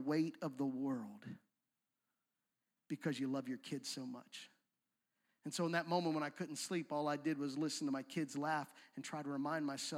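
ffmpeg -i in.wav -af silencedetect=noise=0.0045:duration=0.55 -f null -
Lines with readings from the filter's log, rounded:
silence_start: 1.34
silence_end: 2.90 | silence_duration: 1.57
silence_start: 4.43
silence_end: 5.46 | silence_duration: 1.03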